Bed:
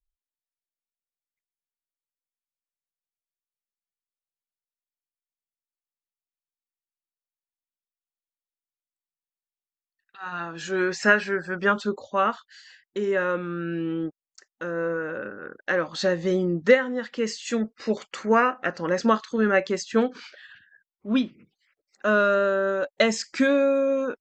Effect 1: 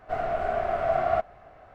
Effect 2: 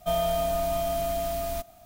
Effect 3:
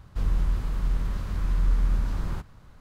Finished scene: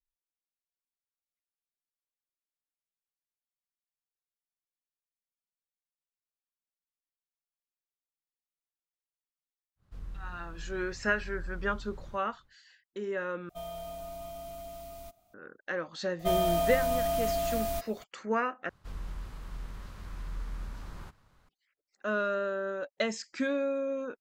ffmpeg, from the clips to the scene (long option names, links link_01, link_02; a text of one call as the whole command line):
ffmpeg -i bed.wav -i cue0.wav -i cue1.wav -i cue2.wav -filter_complex "[3:a]asplit=2[link_01][link_02];[2:a]asplit=2[link_03][link_04];[0:a]volume=-10dB[link_05];[link_01]equalizer=frequency=960:width_type=o:width=0.27:gain=-3.5[link_06];[link_03]bandreject=frequency=1700:width=6.1[link_07];[link_02]lowshelf=frequency=400:gain=-8[link_08];[link_05]asplit=3[link_09][link_10][link_11];[link_09]atrim=end=13.494[link_12];[link_07]atrim=end=1.85,asetpts=PTS-STARTPTS,volume=-15dB[link_13];[link_10]atrim=start=15.336:end=18.694[link_14];[link_08]atrim=end=2.8,asetpts=PTS-STARTPTS,volume=-7.5dB[link_15];[link_11]atrim=start=21.486[link_16];[link_06]atrim=end=2.8,asetpts=PTS-STARTPTS,volume=-17.5dB,afade=type=in:duration=0.1,afade=type=out:start_time=2.7:duration=0.1,adelay=9760[link_17];[link_04]atrim=end=1.85,asetpts=PTS-STARTPTS,volume=-1.5dB,afade=type=in:duration=0.004:curve=hsin,afade=type=out:start_time=1.846:duration=0.004:curve=hsin,adelay=16190[link_18];[link_12][link_13]acrossfade=duration=0.004:curve1=hsin:curve2=hsin[link_19];[link_19][link_14]acrossfade=duration=0.004:curve1=hsin:curve2=hsin[link_20];[link_20][link_15]acrossfade=duration=0.004:curve1=hsin:curve2=hsin[link_21];[link_21][link_16]acrossfade=duration=0.004:curve1=hsin:curve2=hsin[link_22];[link_22][link_17][link_18]amix=inputs=3:normalize=0" out.wav